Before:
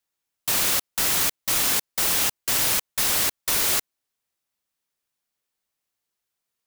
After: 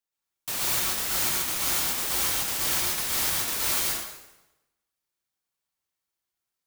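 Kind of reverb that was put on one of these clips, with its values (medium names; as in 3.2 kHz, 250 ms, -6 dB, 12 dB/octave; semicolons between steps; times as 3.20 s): plate-style reverb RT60 0.97 s, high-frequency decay 0.85×, pre-delay 105 ms, DRR -4 dB; trim -8.5 dB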